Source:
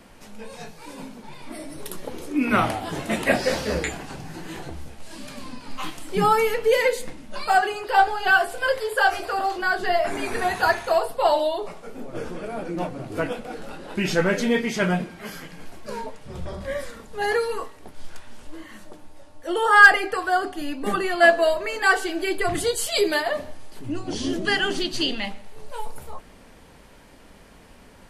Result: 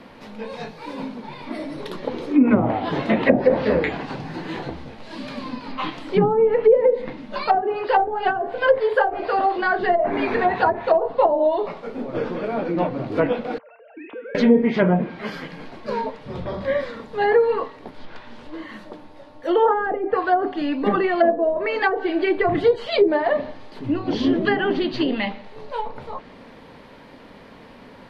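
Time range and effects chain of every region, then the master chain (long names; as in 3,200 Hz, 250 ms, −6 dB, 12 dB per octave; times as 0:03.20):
0:13.58–0:14.35: three sine waves on the formant tracks + downward compressor, threshold −27 dBFS + tuned comb filter 230 Hz, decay 0.87 s, mix 80%
whole clip: dynamic equaliser 1,300 Hz, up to −4 dB, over −34 dBFS, Q 1.7; treble cut that deepens with the level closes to 480 Hz, closed at −16 dBFS; octave-band graphic EQ 125/250/500/1,000/2,000/4,000/8,000 Hz +9/+11/+10/+10/+8/+11/−8 dB; level −6.5 dB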